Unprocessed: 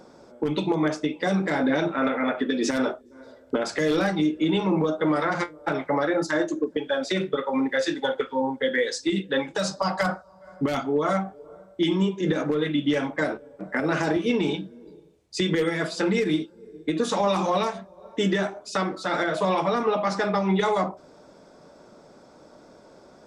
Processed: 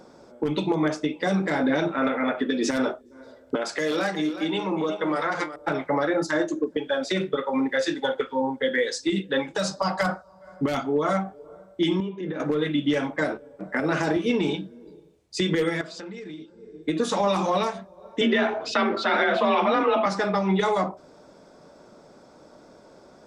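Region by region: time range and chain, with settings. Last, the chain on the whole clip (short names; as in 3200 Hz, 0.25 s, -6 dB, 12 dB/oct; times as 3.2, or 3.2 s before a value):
3.55–5.56 HPF 400 Hz 6 dB/oct + echo 0.367 s -11.5 dB
12–12.4 BPF 110–2700 Hz + compressor 2:1, threshold -32 dBFS
15.81–16.83 LPF 7600 Hz 24 dB/oct + compressor, threshold -36 dBFS
18.21–20.06 frequency shift +37 Hz + synth low-pass 3000 Hz, resonance Q 1.7 + fast leveller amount 50%
whole clip: dry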